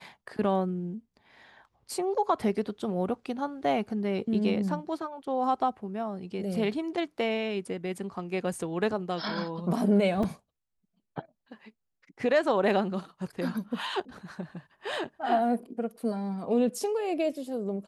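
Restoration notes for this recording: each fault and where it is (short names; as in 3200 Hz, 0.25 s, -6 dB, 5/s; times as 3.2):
10.23 gap 3.6 ms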